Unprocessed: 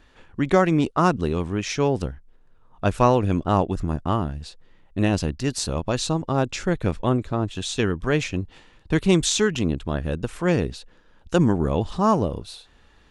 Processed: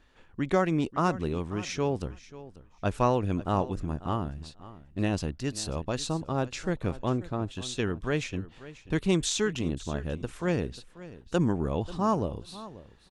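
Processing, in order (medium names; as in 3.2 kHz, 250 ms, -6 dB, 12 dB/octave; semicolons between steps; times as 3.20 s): feedback delay 538 ms, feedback 15%, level -17 dB; trim -7 dB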